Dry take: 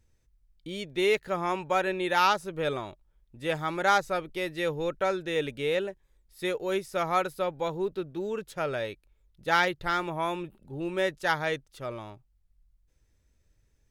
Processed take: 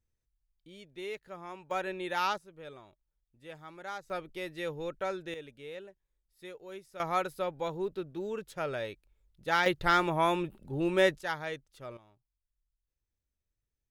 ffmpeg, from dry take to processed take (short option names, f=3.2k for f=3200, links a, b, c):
-af "asetnsamples=n=441:p=0,asendcmd='1.71 volume volume -7.5dB;2.38 volume volume -17.5dB;4.1 volume volume -7dB;5.34 volume volume -16dB;7 volume volume -4dB;9.66 volume volume 3dB;11.21 volume volume -8dB;11.97 volume volume -19.5dB',volume=-15dB"